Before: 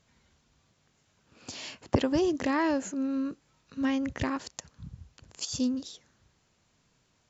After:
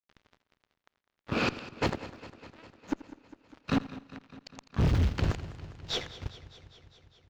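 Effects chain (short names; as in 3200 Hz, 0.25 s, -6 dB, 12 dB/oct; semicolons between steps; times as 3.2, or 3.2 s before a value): spectral noise reduction 8 dB; in parallel at +2 dB: compressor 10:1, threshold -41 dBFS, peak gain reduction 22.5 dB; on the sum: modulation noise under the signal 14 dB; flipped gate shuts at -25 dBFS, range -40 dB; fuzz box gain 50 dB, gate -59 dBFS; air absorption 220 m; on a send: feedback echo 84 ms, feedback 45%, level -17.5 dB; on the sum: warbling echo 0.202 s, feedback 71%, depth 68 cents, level -16.5 dB; gain -8 dB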